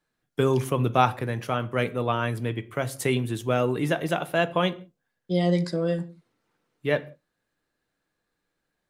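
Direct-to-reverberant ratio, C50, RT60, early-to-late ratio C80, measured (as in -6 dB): 11.5 dB, 19.5 dB, no single decay rate, 23.0 dB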